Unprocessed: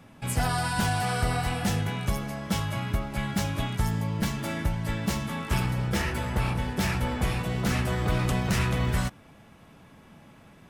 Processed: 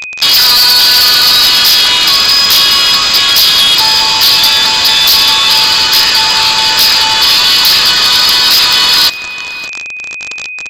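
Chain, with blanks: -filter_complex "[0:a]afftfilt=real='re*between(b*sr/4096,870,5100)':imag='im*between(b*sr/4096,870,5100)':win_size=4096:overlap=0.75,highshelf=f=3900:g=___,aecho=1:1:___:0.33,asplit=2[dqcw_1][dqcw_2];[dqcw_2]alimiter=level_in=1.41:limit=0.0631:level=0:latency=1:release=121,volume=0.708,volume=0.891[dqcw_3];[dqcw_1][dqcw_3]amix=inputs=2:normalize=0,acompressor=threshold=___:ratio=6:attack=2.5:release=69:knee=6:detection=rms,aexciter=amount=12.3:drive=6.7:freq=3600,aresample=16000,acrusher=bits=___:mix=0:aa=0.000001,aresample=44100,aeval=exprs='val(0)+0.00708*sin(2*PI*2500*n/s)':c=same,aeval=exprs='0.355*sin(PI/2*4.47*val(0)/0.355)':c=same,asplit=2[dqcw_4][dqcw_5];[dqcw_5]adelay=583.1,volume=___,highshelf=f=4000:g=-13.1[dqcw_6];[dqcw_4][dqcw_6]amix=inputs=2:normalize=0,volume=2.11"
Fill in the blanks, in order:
3.5, 3.4, 0.02, 5, 0.224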